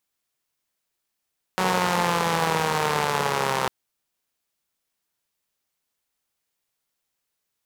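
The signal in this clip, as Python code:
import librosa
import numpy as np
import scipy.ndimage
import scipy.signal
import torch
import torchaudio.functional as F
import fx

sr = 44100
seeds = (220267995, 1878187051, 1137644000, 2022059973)

y = fx.engine_four_rev(sr, seeds[0], length_s=2.1, rpm=5600, resonances_hz=(190.0, 470.0, 850.0), end_rpm=3900)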